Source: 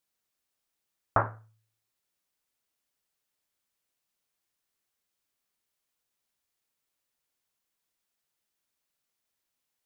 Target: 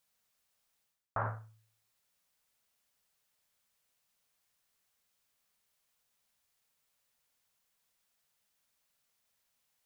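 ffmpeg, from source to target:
ffmpeg -i in.wav -af "equalizer=frequency=330:width=4.9:gain=-14.5,areverse,acompressor=threshold=-38dB:ratio=6,areverse,volume=4.5dB" out.wav

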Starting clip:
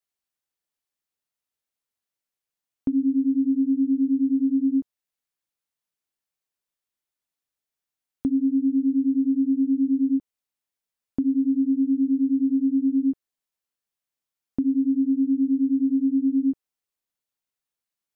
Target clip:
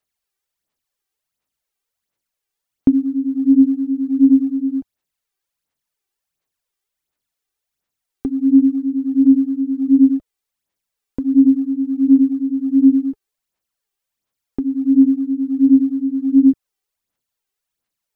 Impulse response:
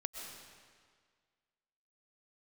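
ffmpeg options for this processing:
-af "aphaser=in_gain=1:out_gain=1:delay=2.6:decay=0.59:speed=1.4:type=sinusoidal,volume=4.5dB"

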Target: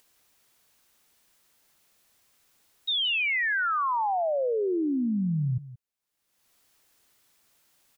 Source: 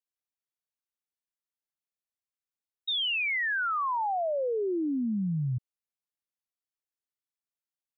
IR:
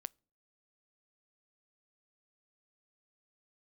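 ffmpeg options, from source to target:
-af "acompressor=mode=upward:threshold=-48dB:ratio=2.5,aecho=1:1:174:0.158,volume=2.5dB"

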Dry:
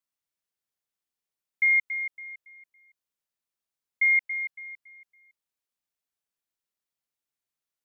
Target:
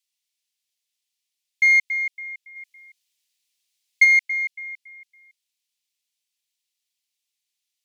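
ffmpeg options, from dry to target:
ffmpeg -i in.wav -filter_complex "[0:a]aemphasis=mode=reproduction:type=50kf,asplit=3[link_01][link_02][link_03];[link_01]afade=type=out:start_time=2.55:duration=0.02[link_04];[link_02]acontrast=50,afade=type=in:start_time=2.55:duration=0.02,afade=type=out:start_time=4.03:duration=0.02[link_05];[link_03]afade=type=in:start_time=4.03:duration=0.02[link_06];[link_04][link_05][link_06]amix=inputs=3:normalize=0,aexciter=amount=9.4:drive=8.4:freq=2100,volume=-8.5dB" out.wav

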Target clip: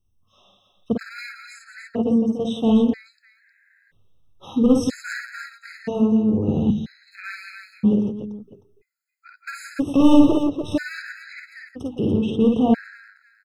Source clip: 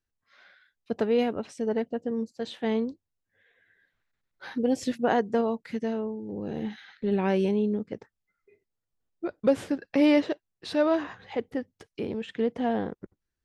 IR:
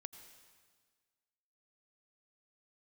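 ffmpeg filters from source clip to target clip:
-filter_complex "[0:a]asettb=1/sr,asplit=3[link_01][link_02][link_03];[link_01]atrim=end=7.864[link_04];[link_02]atrim=start=7.86:end=9.31,asetpts=PTS-STARTPTS,afade=type=in:duration=0.004:curve=qsin,afade=type=out:start_time=1.446:duration=0.004:curve=qsin,acompressor=threshold=-34dB:ratio=2[link_05];[link_03]atrim=start=9.306[link_06];[link_04][link_05]acrossfade=duration=0.004:curve1=hsin:curve2=qsin[link_07];[link_07][link_06]acrossfade=duration=0.004:curve1=qsin:curve2=hsin,asettb=1/sr,asplit=3[link_08][link_09][link_10];[link_08]atrim=end=10.144[link_11];[link_09]atrim=start=10.14:end=10.72,asetpts=PTS-STARTPTS,afade=type=in:duration=0.004:curve=qsin,afade=type=out:start_time=0.576:duration=0.004:curve=qsin,tiltshelf=frequency=770:gain=5.5[link_12];[link_10]atrim=start=10.716[link_13];[link_11][link_12]acrossfade=duration=0.004:curve1=hsin:curve2=qsin[link_14];[link_14][link_13]acrossfade=duration=0.004:curve1=qsin:curve2=hsin,volume=20dB,asoftclip=hard,volume=-20dB,bandreject=frequency=60:width_type=h:width=6,bandreject=frequency=120:width_type=h:width=6,bandreject=frequency=180:width_type=h:width=6,bandreject=frequency=240:width_type=h:width=6,bandreject=frequency=300:width_type=h:width=6,aecho=1:1:51|61|171|291|601:0.668|0.447|0.335|0.447|0.133,asettb=1/sr,asplit=3[link_15][link_16][link_17];[link_15]atrim=end=6.704[link_18];[link_16]atrim=start=6.7:end=7.15,asetpts=PTS-STARTPTS,afade=type=in:duration=0.004:curve=qsin,afade=type=out:start_time=0.446:duration=0.004:curve=qsin,acrossover=split=230|3000[link_19][link_20][link_21];[link_20]acompressor=threshold=-51dB:ratio=4[link_22];[link_19][link_22][link_21]amix=inputs=3:normalize=0[link_23];[link_17]atrim=start=7.146[link_24];[link_18][link_23]acrossfade=duration=0.004:curve1=hsin:curve2=qsin[link_25];[link_25][link_24]acrossfade=duration=0.004:curve1=qsin:curve2=hsin,bass=frequency=250:gain=14,treble=frequency=4000:gain=3,afftfilt=real='re*gt(sin(2*PI*0.51*pts/sr)*(1-2*mod(floor(b*sr/1024/1300),2)),0)':imag='im*gt(sin(2*PI*0.51*pts/sr)*(1-2*mod(floor(b*sr/1024/1300),2)),0)':win_size=1024:overlap=0.75,volume=4dB"

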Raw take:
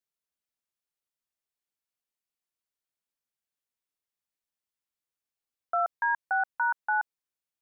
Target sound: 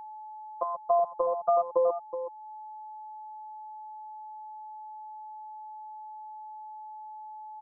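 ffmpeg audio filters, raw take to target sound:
ffmpeg -i in.wav -filter_complex "[0:a]areverse,acrossover=split=390|1000[link_01][link_02][link_03];[link_01]acompressor=threshold=-59dB:ratio=4[link_04];[link_02]acompressor=threshold=-42dB:ratio=4[link_05];[link_03]acompressor=threshold=-39dB:ratio=4[link_06];[link_04][link_05][link_06]amix=inputs=3:normalize=0,lowpass=frequency=1300:width=0.5412,lowpass=frequency=1300:width=1.3066,bandreject=frequency=360:width=12,asetrate=32097,aresample=44100,atempo=1.37395,afftfilt=real='hypot(re,im)*cos(PI*b)':imag='0':win_size=1024:overlap=0.75,asplit=2[link_07][link_08];[link_08]aecho=0:1:372:0.299[link_09];[link_07][link_09]amix=inputs=2:normalize=0,aeval=exprs='val(0)+0.00112*sin(2*PI*860*n/s)':channel_layout=same,asplit=2[link_10][link_11];[link_11]acompressor=mode=upward:threshold=-50dB:ratio=2.5,volume=2.5dB[link_12];[link_10][link_12]amix=inputs=2:normalize=0,lowshelf=frequency=400:gain=4.5,volume=6.5dB" out.wav

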